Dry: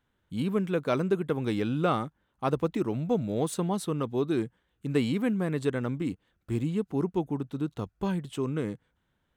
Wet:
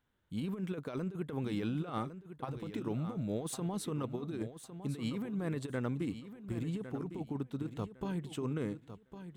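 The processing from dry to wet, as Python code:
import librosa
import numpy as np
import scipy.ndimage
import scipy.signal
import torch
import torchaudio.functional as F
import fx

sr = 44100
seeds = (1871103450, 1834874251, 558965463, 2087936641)

p1 = fx.over_compress(x, sr, threshold_db=-29.0, ratio=-0.5)
p2 = p1 + fx.echo_feedback(p1, sr, ms=1106, feedback_pct=22, wet_db=-11, dry=0)
y = p2 * librosa.db_to_amplitude(-6.5)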